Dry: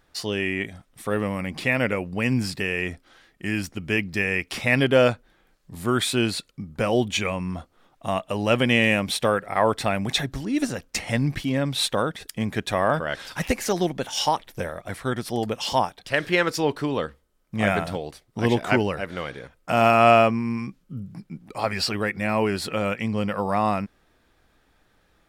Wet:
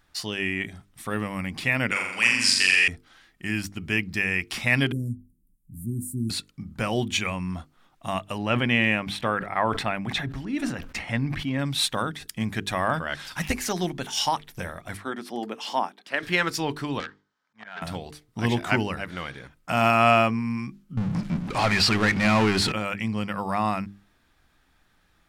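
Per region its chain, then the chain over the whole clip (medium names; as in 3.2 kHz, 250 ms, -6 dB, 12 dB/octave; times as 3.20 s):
1.91–2.88 s: frequency weighting ITU-R 468 + flutter echo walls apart 7.3 m, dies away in 0.91 s
4.92–6.30 s: inverse Chebyshev band-stop 890–3300 Hz, stop band 70 dB + de-hum 156.6 Hz, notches 3
8.38–11.59 s: tone controls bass -2 dB, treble -13 dB + decay stretcher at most 100 dB/s
14.97–16.23 s: high-pass 230 Hz 24 dB/octave + treble shelf 3.1 kHz -10.5 dB
17.00–17.82 s: slow attack 483 ms + cabinet simulation 310–5800 Hz, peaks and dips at 340 Hz -9 dB, 590 Hz -4 dB, 920 Hz +5 dB, 1.6 kHz +8 dB, 2.7 kHz -4 dB + transformer saturation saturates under 2.9 kHz
20.97–22.72 s: power-law waveshaper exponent 0.5 + distance through air 55 m
whole clip: peaking EQ 500 Hz -8.5 dB 0.97 oct; hum notches 50/100/150/200/250/300/350/400/450 Hz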